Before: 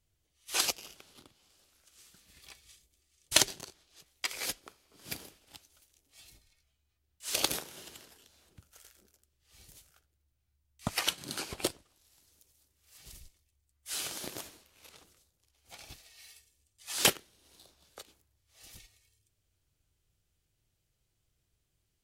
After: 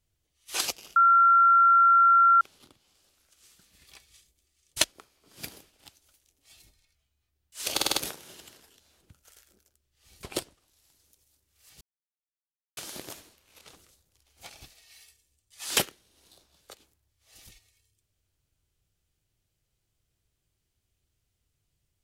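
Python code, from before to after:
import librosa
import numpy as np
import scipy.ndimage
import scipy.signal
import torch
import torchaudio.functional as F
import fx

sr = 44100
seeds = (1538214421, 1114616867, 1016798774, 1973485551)

y = fx.edit(x, sr, fx.insert_tone(at_s=0.96, length_s=1.45, hz=1370.0, db=-15.0),
    fx.cut(start_s=3.39, length_s=1.13),
    fx.stutter(start_s=7.42, slice_s=0.05, count=5),
    fx.cut(start_s=9.71, length_s=1.8),
    fx.silence(start_s=13.09, length_s=0.96),
    fx.clip_gain(start_s=14.94, length_s=0.84, db=5.0), tone=tone)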